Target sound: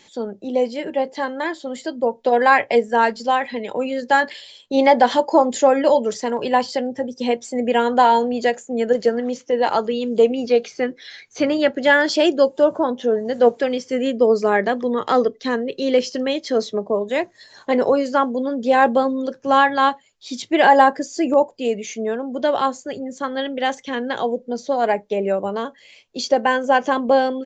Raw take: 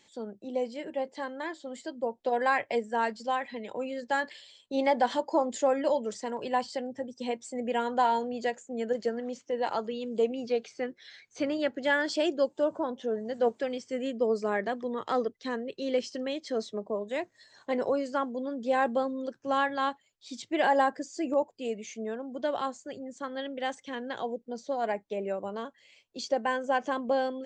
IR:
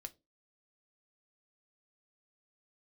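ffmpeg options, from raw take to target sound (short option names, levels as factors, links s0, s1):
-filter_complex "[0:a]asplit=2[s0][s1];[1:a]atrim=start_sample=2205,asetrate=70560,aresample=44100[s2];[s1][s2]afir=irnorm=-1:irlink=0,volume=1.88[s3];[s0][s3]amix=inputs=2:normalize=0,aresample=16000,aresample=44100,volume=2.37"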